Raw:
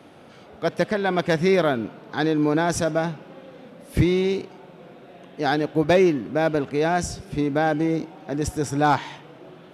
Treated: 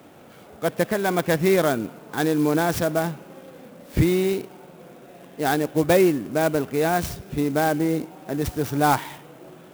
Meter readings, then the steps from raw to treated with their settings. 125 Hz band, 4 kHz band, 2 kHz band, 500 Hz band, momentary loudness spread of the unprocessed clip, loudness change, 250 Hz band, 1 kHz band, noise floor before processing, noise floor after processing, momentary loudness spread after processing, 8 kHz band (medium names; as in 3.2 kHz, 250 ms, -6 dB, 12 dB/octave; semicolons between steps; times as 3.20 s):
0.0 dB, -1.0 dB, -0.5 dB, 0.0 dB, 10 LU, 0.0 dB, 0.0 dB, 0.0 dB, -47 dBFS, -47 dBFS, 11 LU, +2.0 dB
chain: sampling jitter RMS 0.037 ms